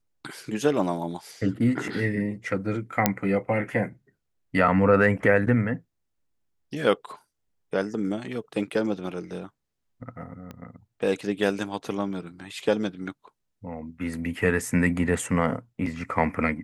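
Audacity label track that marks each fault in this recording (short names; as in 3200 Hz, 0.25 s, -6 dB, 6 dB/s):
3.060000	3.060000	pop -2 dBFS
10.510000	10.510000	pop -25 dBFS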